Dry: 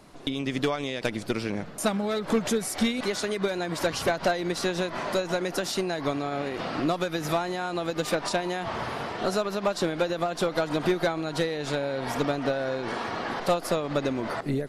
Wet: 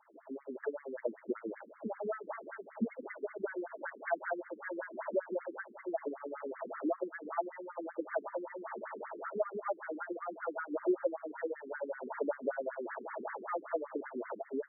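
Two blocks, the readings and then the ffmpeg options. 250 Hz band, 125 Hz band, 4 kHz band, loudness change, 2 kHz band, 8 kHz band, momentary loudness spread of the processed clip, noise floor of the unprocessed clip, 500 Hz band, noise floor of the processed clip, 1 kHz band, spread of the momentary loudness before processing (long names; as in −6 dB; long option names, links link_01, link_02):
−12.5 dB, below −25 dB, below −40 dB, −11.5 dB, −11.5 dB, below −40 dB, 7 LU, −39 dBFS, −9.5 dB, −58 dBFS, −11.0 dB, 5 LU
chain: -af "asuperstop=centerf=740:order=12:qfactor=6.7,highpass=frequency=120:width=0.5412,highpass=frequency=120:width=1.3066,equalizer=frequency=150:width_type=q:width=4:gain=-5,equalizer=frequency=270:width_type=q:width=4:gain=-4,equalizer=frequency=710:width_type=q:width=4:gain=7,equalizer=frequency=1100:width_type=q:width=4:gain=-6,lowpass=frequency=2100:width=0.5412,lowpass=frequency=2100:width=1.3066,afftfilt=real='re*between(b*sr/1024,290*pow(1600/290,0.5+0.5*sin(2*PI*5.2*pts/sr))/1.41,290*pow(1600/290,0.5+0.5*sin(2*PI*5.2*pts/sr))*1.41)':imag='im*between(b*sr/1024,290*pow(1600/290,0.5+0.5*sin(2*PI*5.2*pts/sr))/1.41,290*pow(1600/290,0.5+0.5*sin(2*PI*5.2*pts/sr))*1.41)':win_size=1024:overlap=0.75,volume=-4dB"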